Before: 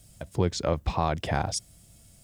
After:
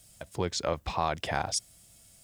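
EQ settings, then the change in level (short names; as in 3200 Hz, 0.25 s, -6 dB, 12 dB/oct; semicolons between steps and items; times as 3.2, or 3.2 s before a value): low shelf 440 Hz -10.5 dB; +1.0 dB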